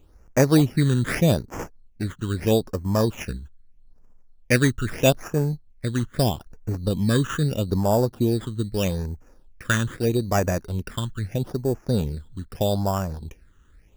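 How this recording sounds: aliases and images of a low sample rate 4.2 kHz, jitter 0%; phasing stages 8, 0.79 Hz, lowest notch 670–3700 Hz

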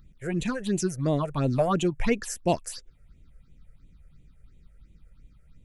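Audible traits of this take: phasing stages 6, 2.9 Hz, lowest notch 250–1400 Hz

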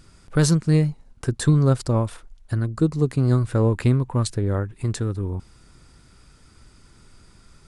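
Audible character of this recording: noise floor -53 dBFS; spectral tilt -8.5 dB/octave

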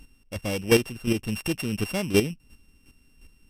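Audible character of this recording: a buzz of ramps at a fixed pitch in blocks of 16 samples; chopped level 2.8 Hz, depth 60%, duty 15%; Vorbis

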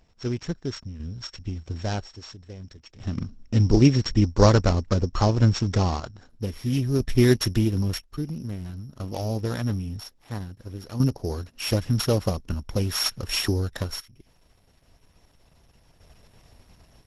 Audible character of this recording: a buzz of ramps at a fixed pitch in blocks of 8 samples; random-step tremolo 1 Hz, depth 85%; Opus

